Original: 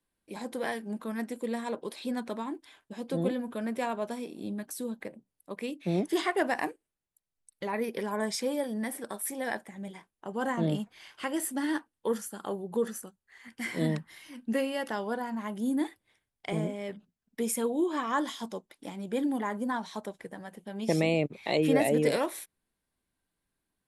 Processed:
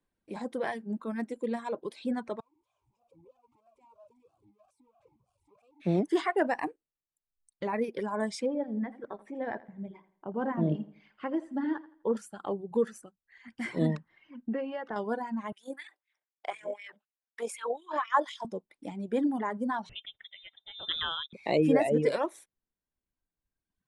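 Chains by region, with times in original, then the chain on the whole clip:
0:02.40–0:05.80: converter with a step at zero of −29.5 dBFS + drawn EQ curve 120 Hz 0 dB, 200 Hz −24 dB, 380 Hz −28 dB, 820 Hz −17 dB, 2,100 Hz −26 dB, 3,400 Hz −18 dB, 8,900 Hz −2 dB + formant filter swept between two vowels a-u 3.1 Hz
0:08.46–0:12.17: head-to-tape spacing loss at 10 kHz 32 dB + repeating echo 83 ms, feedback 37%, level −8.5 dB
0:14.08–0:14.96: low-pass filter 2,400 Hz + downward compressor 3 to 1, threshold −31 dBFS
0:15.52–0:18.45: auto-filter high-pass sine 4 Hz 560–2,500 Hz + amplitude modulation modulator 43 Hz, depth 20%
0:19.89–0:21.33: low-shelf EQ 450 Hz −4 dB + voice inversion scrambler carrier 3,800 Hz
whole clip: reverb reduction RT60 1.6 s; Butterworth low-pass 10,000 Hz 36 dB per octave; high-shelf EQ 2,400 Hz −10.5 dB; level +2.5 dB

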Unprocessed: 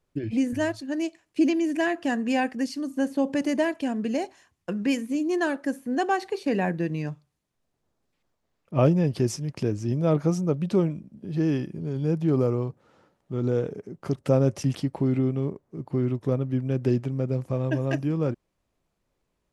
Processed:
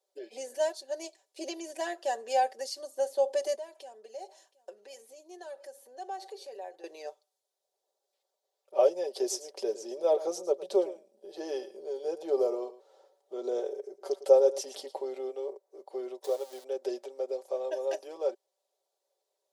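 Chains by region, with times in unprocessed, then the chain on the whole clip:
0:03.55–0:06.84: downward compressor 3 to 1, threshold −40 dBFS + single-tap delay 722 ms −22.5 dB
0:09.07–0:14.98: low-shelf EQ 490 Hz +6 dB + single-tap delay 110 ms −15.5 dB
0:16.24–0:16.64: converter with a step at zero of −36 dBFS + bass and treble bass −9 dB, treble +2 dB
whole clip: elliptic high-pass filter 460 Hz, stop band 70 dB; flat-topped bell 1,700 Hz −13 dB; comb filter 5.2 ms, depth 73%

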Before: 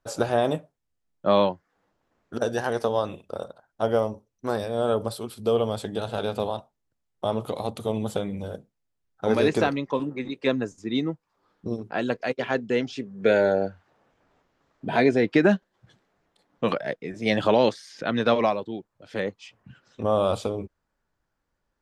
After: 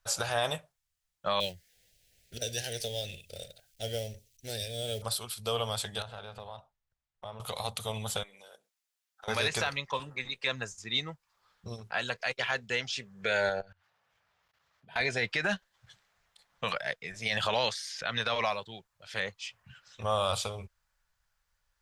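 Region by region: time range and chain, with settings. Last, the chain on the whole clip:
0:01.40–0:05.02: mu-law and A-law mismatch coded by mu + Butterworth band-reject 1,100 Hz, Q 0.56 + parametric band 200 Hz −4 dB 0.31 octaves
0:06.02–0:07.40: low-pass filter 1,400 Hz 6 dB per octave + downward compressor 2 to 1, threshold −38 dBFS
0:08.23–0:09.28: Chebyshev high-pass filter 300 Hz, order 3 + downward compressor 2 to 1, threshold −50 dBFS
0:13.49–0:15.01: high-pass filter 74 Hz + parametric band 7,400 Hz −5 dB 0.7 octaves + output level in coarse steps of 24 dB
whole clip: guitar amp tone stack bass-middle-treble 10-0-10; brickwall limiter −25 dBFS; level +7.5 dB

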